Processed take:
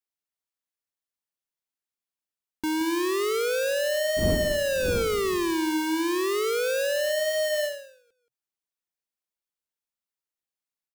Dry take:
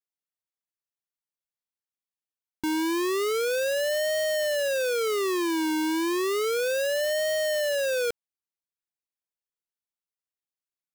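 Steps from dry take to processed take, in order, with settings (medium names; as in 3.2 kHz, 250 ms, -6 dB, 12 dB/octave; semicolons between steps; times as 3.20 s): 4.16–5.54 s: wind noise 200 Hz -31 dBFS; peaking EQ 130 Hz -12.5 dB 0.23 oct; delay 175 ms -9.5 dB; endings held to a fixed fall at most 100 dB/s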